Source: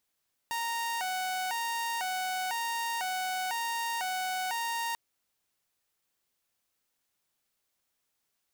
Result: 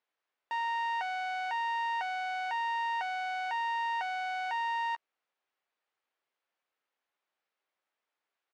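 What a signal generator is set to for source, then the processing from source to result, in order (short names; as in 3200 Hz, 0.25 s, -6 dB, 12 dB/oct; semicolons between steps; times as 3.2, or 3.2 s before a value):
siren hi-lo 744–928 Hz 1/s saw -28 dBFS 4.44 s
BPF 430–2400 Hz; doubler 13 ms -11 dB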